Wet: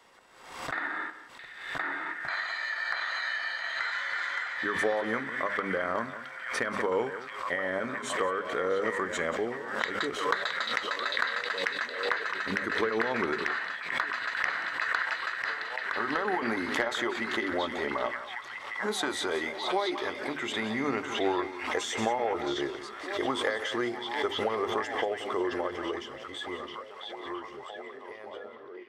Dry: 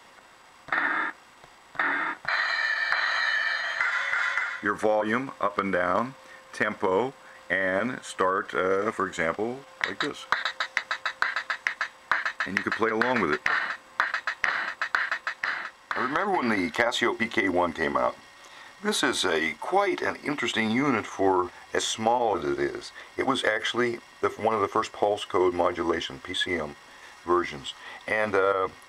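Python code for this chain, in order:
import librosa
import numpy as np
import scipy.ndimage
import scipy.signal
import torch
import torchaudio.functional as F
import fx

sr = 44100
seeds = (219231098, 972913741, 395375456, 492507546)

p1 = fx.fade_out_tail(x, sr, length_s=7.7)
p2 = fx.peak_eq(p1, sr, hz=430.0, db=4.5, octaves=0.45)
p3 = fx.hum_notches(p2, sr, base_hz=50, count=5)
p4 = p3 + fx.echo_single(p3, sr, ms=181, db=-13.5, dry=0)
p5 = fx.rider(p4, sr, range_db=4, speed_s=2.0)
p6 = fx.echo_stepped(p5, sr, ms=667, hz=3400.0, octaves=-0.7, feedback_pct=70, wet_db=-2.0)
p7 = fx.pre_swell(p6, sr, db_per_s=64.0)
y = F.gain(torch.from_numpy(p7), -6.5).numpy()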